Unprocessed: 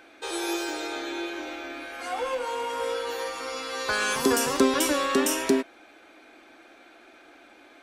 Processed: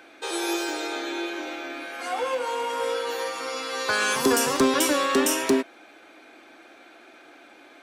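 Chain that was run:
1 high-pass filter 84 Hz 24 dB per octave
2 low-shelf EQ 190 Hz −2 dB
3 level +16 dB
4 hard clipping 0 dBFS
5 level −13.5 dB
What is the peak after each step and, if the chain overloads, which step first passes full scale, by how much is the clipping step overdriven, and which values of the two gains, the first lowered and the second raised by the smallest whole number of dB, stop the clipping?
−7.5, −8.0, +8.0, 0.0, −13.5 dBFS
step 3, 8.0 dB
step 3 +8 dB, step 5 −5.5 dB

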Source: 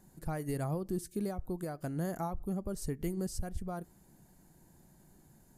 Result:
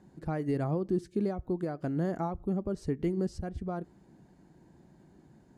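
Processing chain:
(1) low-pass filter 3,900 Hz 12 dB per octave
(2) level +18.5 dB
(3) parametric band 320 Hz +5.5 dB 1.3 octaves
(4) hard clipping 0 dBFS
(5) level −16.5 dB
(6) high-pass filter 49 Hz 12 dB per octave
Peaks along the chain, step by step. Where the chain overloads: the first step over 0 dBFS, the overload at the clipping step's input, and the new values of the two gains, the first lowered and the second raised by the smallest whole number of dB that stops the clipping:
−23.5, −5.0, −3.0, −3.0, −19.5, −20.0 dBFS
no step passes full scale

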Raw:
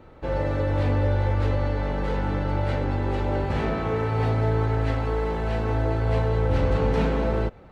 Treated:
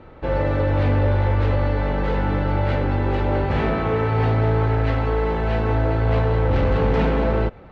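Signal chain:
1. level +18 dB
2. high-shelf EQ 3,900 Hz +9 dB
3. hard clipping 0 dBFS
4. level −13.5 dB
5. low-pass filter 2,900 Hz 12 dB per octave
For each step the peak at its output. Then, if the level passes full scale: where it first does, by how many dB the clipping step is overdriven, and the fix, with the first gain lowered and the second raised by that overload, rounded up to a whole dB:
+6.5, +7.0, 0.0, −13.5, −13.0 dBFS
step 1, 7.0 dB
step 1 +11 dB, step 4 −6.5 dB

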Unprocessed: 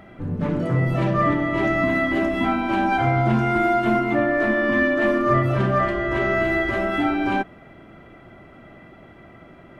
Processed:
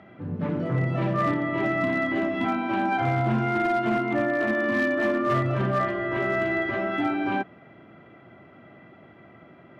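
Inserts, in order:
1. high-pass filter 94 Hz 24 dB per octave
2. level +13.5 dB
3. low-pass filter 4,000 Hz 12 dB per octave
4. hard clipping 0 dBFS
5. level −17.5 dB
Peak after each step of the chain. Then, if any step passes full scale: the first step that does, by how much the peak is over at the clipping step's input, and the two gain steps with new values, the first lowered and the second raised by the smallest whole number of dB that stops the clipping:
−7.5, +6.0, +6.0, 0.0, −17.5 dBFS
step 2, 6.0 dB
step 2 +7.5 dB, step 5 −11.5 dB

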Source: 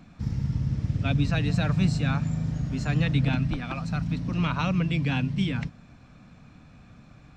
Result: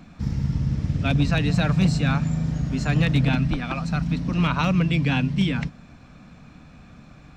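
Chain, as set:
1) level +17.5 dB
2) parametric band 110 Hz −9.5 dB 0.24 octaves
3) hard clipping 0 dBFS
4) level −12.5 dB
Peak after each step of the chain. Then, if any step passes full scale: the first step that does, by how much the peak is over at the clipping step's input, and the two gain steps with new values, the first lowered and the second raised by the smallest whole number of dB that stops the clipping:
+5.5, +4.5, 0.0, −12.5 dBFS
step 1, 4.5 dB
step 1 +12.5 dB, step 4 −7.5 dB

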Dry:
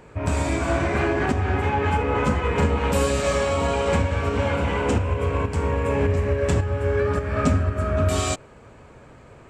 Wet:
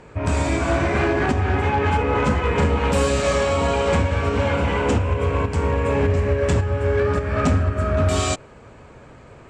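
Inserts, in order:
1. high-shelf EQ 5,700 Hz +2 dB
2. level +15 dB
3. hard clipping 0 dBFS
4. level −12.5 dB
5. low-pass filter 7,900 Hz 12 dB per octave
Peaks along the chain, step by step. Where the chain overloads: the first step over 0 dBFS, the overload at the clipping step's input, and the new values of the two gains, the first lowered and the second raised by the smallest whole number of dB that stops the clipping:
−8.0, +7.0, 0.0, −12.5, −12.0 dBFS
step 2, 7.0 dB
step 2 +8 dB, step 4 −5.5 dB

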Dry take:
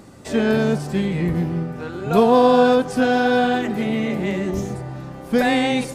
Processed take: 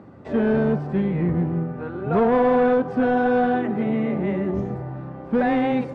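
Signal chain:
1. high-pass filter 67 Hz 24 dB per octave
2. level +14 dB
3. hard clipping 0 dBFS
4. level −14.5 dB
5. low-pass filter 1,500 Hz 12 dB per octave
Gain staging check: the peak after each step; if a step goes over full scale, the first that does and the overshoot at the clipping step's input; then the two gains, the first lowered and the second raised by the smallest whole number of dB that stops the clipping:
−4.0, +10.0, 0.0, −14.5, −14.0 dBFS
step 2, 10.0 dB
step 2 +4 dB, step 4 −4.5 dB

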